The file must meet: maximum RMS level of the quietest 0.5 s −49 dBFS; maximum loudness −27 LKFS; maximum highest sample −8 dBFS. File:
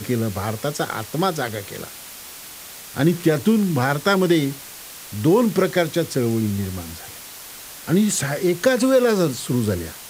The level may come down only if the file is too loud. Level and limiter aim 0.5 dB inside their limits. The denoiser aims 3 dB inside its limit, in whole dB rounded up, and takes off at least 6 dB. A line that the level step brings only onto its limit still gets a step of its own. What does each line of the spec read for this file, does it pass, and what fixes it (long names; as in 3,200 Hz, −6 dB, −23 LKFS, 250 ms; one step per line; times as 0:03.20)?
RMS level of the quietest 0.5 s −38 dBFS: out of spec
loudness −20.5 LKFS: out of spec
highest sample −5.0 dBFS: out of spec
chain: broadband denoise 7 dB, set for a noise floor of −38 dBFS
level −7 dB